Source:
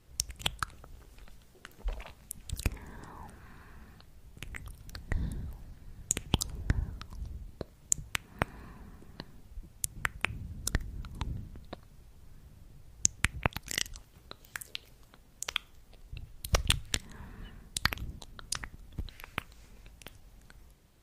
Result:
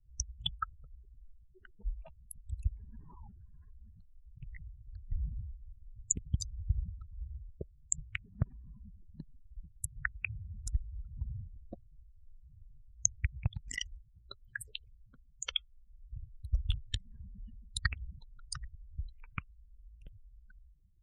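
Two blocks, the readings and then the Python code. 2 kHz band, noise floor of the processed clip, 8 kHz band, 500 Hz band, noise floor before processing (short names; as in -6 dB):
-6.0 dB, -62 dBFS, -3.5 dB, -14.0 dB, -59 dBFS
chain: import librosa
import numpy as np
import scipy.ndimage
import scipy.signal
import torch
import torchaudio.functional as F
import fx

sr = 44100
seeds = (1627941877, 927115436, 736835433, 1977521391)

y = fx.spec_expand(x, sr, power=3.4)
y = fx.rotary_switch(y, sr, hz=7.5, then_hz=0.85, switch_at_s=9.19)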